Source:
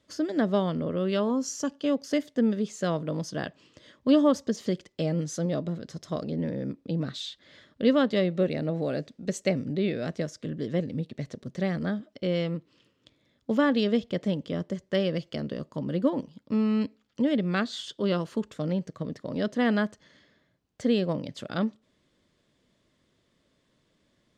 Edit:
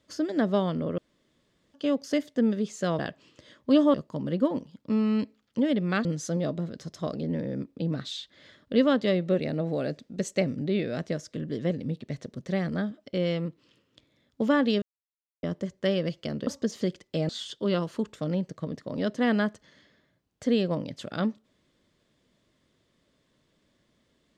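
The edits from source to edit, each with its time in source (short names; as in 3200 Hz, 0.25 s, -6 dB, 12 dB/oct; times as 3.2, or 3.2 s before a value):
0.98–1.74 room tone
2.99–3.37 cut
4.32–5.14 swap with 15.56–17.67
13.91–14.52 mute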